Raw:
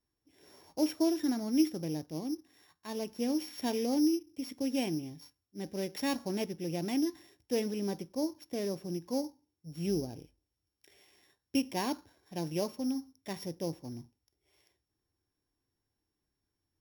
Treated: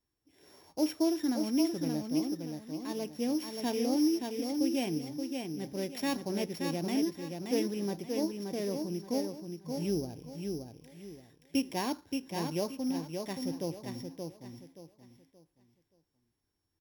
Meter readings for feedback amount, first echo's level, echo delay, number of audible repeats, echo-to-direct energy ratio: 30%, −5.0 dB, 576 ms, 3, −4.5 dB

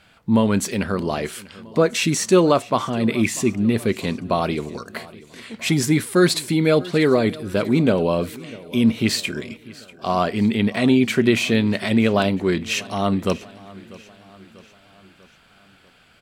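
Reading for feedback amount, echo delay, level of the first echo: 53%, 643 ms, −20.5 dB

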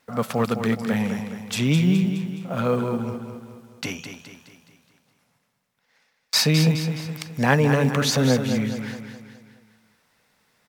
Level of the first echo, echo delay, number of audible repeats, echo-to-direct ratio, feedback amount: −8.0 dB, 210 ms, 5, −7.0 dB, 48%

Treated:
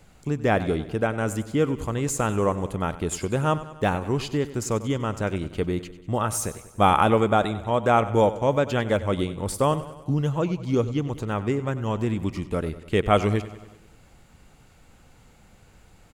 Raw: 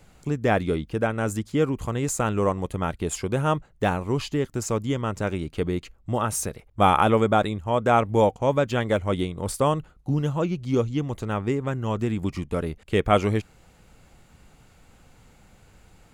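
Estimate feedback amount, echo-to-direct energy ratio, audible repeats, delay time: 58%, −13.5 dB, 5, 96 ms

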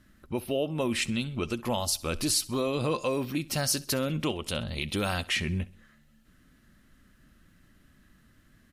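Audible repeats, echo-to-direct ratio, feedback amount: 3, −20.0 dB, 48%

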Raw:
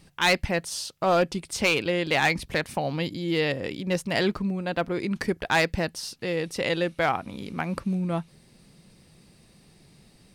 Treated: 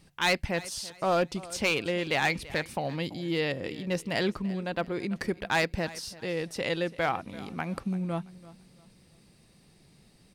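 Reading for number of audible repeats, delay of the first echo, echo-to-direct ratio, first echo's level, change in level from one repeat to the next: 2, 336 ms, −18.5 dB, −19.0 dB, −10.0 dB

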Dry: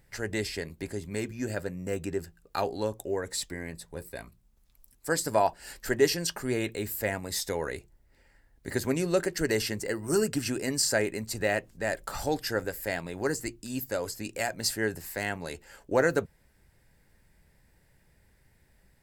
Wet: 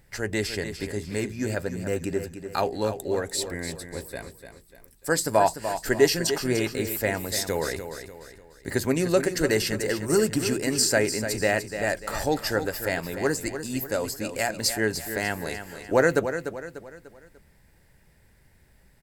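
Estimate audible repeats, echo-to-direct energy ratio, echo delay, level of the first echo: 4, −8.5 dB, 296 ms, −9.5 dB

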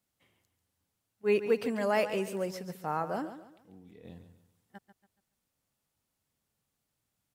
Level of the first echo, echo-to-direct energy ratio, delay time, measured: −11.5 dB, −11.0 dB, 141 ms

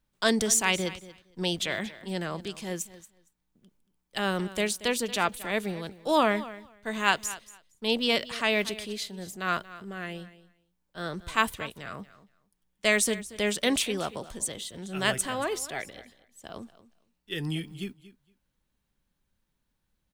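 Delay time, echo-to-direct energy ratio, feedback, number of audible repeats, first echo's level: 231 ms, −17.0 dB, 16%, 2, −17.0 dB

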